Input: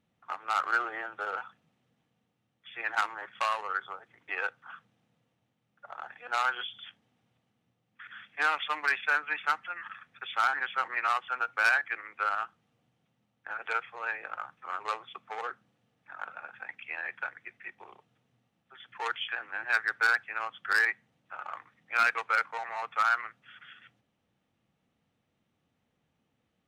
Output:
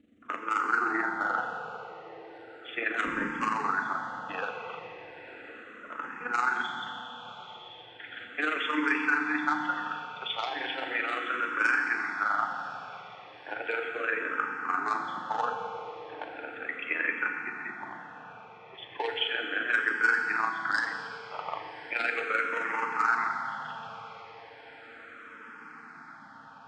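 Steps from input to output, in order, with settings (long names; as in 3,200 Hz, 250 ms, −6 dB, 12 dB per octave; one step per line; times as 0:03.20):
0:03.04–0:03.48: sub-octave generator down 1 octave, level +4 dB
Butterworth low-pass 8,300 Hz 36 dB per octave
parametric band 250 Hz +14.5 dB 1.4 octaves
in parallel at +1 dB: compressor whose output falls as the input rises −34 dBFS
on the sum: amplitude modulation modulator 23 Hz, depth 50%
on a send: feedback delay with all-pass diffusion 1,061 ms, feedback 69%, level −16 dB
on the sum: feedback delay network reverb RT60 3.1 s, high-frequency decay 0.85×, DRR 2 dB
frequency shifter mixed with the dry sound −0.36 Hz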